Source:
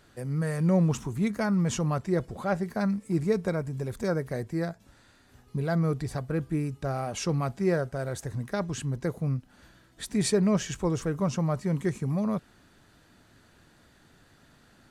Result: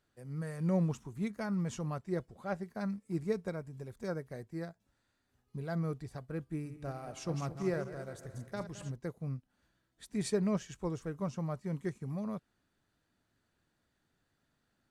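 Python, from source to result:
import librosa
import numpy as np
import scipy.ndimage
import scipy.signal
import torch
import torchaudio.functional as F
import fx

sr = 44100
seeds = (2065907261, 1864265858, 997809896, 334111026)

y = fx.reverse_delay_fb(x, sr, ms=108, feedback_pct=67, wet_db=-8.5, at=(6.55, 8.92))
y = fx.upward_expand(y, sr, threshold_db=-46.0, expansion=1.5)
y = y * 10.0 ** (-6.5 / 20.0)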